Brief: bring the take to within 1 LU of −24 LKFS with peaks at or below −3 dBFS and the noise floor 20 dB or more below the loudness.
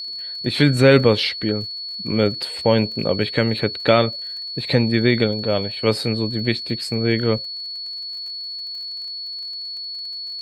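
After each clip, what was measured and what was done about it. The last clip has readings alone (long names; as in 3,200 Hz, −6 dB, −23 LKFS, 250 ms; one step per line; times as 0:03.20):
crackle rate 37 per second; interfering tone 4,400 Hz; level of the tone −28 dBFS; integrated loudness −21.0 LKFS; sample peak −1.0 dBFS; target loudness −24.0 LKFS
→ click removal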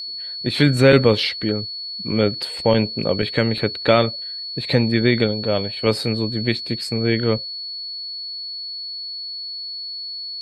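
crackle rate 0.19 per second; interfering tone 4,400 Hz; level of the tone −28 dBFS
→ notch filter 4,400 Hz, Q 30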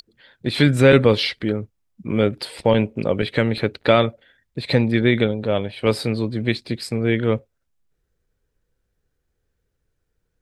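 interfering tone none found; integrated loudness −20.0 LKFS; sample peak −1.0 dBFS; target loudness −24.0 LKFS
→ level −4 dB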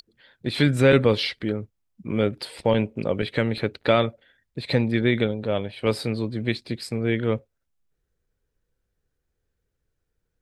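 integrated loudness −24.0 LKFS; sample peak −5.0 dBFS; background noise floor −78 dBFS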